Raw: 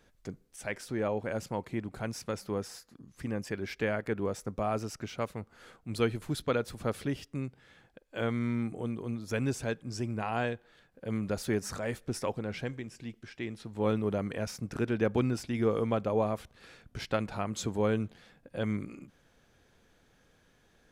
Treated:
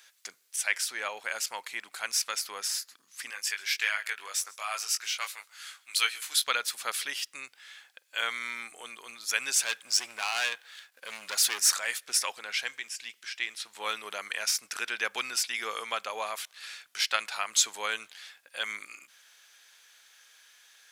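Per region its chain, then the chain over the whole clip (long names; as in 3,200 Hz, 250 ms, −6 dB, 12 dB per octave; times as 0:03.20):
0:03.30–0:06.46: high-pass filter 1,500 Hz 6 dB per octave + double-tracking delay 20 ms −5 dB + single-tap delay 139 ms −23 dB
0:09.56–0:11.74: hard clipping −28.5 dBFS + leveller curve on the samples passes 1
whole clip: high-pass filter 1,100 Hz 12 dB per octave; tilt shelving filter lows −8.5 dB, about 1,400 Hz; level +8.5 dB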